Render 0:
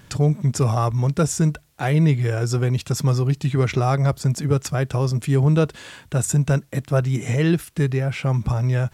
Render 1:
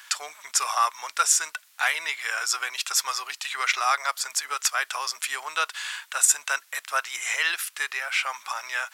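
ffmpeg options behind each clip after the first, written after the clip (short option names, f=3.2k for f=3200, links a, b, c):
-af "highpass=f=1.1k:w=0.5412,highpass=f=1.1k:w=1.3066,volume=7.5dB"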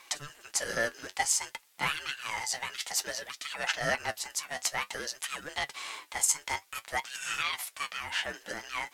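-af "aeval=exprs='val(0)*sin(2*PI*590*n/s)':c=same,flanger=delay=5.6:depth=6.6:regen=53:speed=0.55:shape=triangular"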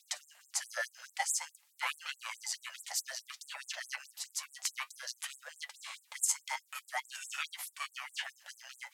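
-af "afftfilt=real='re*gte(b*sr/1024,490*pow(7500/490,0.5+0.5*sin(2*PI*4.7*pts/sr)))':imag='im*gte(b*sr/1024,490*pow(7500/490,0.5+0.5*sin(2*PI*4.7*pts/sr)))':win_size=1024:overlap=0.75,volume=-4.5dB"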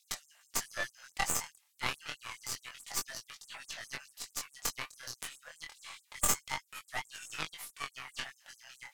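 -af "aeval=exprs='0.188*(cos(1*acos(clip(val(0)/0.188,-1,1)))-cos(1*PI/2))+0.075*(cos(2*acos(clip(val(0)/0.188,-1,1)))-cos(2*PI/2))+0.0531*(cos(6*acos(clip(val(0)/0.188,-1,1)))-cos(6*PI/2))+0.00944*(cos(7*acos(clip(val(0)/0.188,-1,1)))-cos(7*PI/2))+0.0237*(cos(8*acos(clip(val(0)/0.188,-1,1)))-cos(8*PI/2))':c=same,flanger=delay=19:depth=6.2:speed=0.28,volume=4dB"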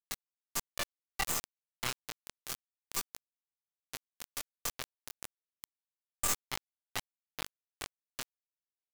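-af "asoftclip=type=tanh:threshold=-28dB,acrusher=bits=4:mix=0:aa=0.000001,volume=3dB"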